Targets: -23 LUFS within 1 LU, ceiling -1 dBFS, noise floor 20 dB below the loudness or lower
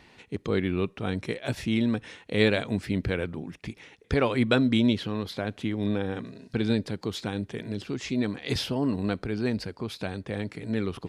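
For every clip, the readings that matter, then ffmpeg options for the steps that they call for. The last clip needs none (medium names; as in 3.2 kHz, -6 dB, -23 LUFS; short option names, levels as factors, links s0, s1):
loudness -28.5 LUFS; peak level -7.0 dBFS; loudness target -23.0 LUFS
-> -af "volume=1.88"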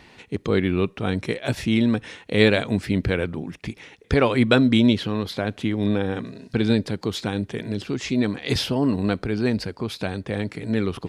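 loudness -23.0 LUFS; peak level -1.5 dBFS; noise floor -52 dBFS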